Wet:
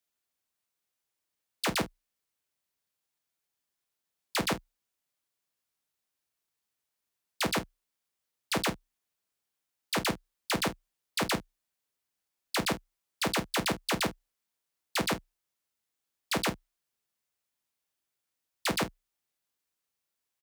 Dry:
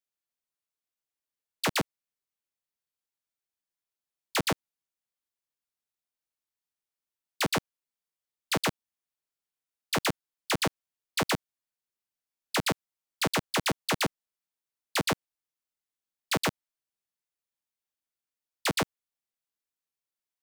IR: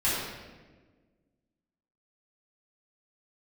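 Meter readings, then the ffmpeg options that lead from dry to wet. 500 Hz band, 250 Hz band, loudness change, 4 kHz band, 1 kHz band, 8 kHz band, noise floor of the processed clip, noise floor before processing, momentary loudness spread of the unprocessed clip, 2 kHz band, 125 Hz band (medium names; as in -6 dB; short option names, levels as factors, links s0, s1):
-1.5 dB, -0.5 dB, -1.5 dB, -1.5 dB, -1.5 dB, -1.5 dB, under -85 dBFS, under -85 dBFS, 4 LU, -2.0 dB, -2.5 dB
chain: -af "afreqshift=31,alimiter=level_in=1.33:limit=0.0631:level=0:latency=1:release=21,volume=0.75,aecho=1:1:33|49:0.237|0.141,volume=2"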